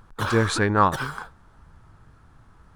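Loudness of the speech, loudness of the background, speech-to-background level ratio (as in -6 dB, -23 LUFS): -22.0 LUFS, -32.0 LUFS, 10.0 dB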